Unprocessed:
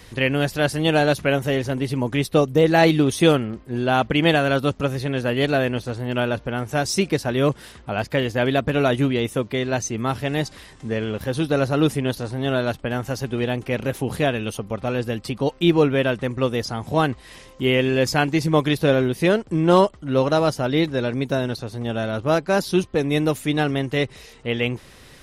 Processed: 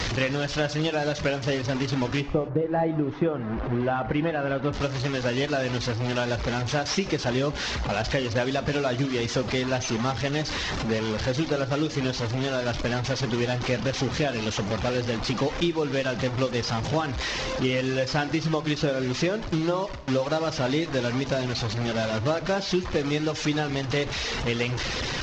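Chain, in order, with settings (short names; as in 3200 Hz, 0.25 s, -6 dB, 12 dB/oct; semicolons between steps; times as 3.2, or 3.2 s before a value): delta modulation 32 kbps, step -21.5 dBFS; 2.2–4.72 LPF 1000 Hz -> 2100 Hz 12 dB/oct; compressor 12:1, threshold -20 dBFS, peak gain reduction 12 dB; reverb removal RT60 0.64 s; gate with hold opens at -26 dBFS; non-linear reverb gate 0.31 s falling, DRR 11 dB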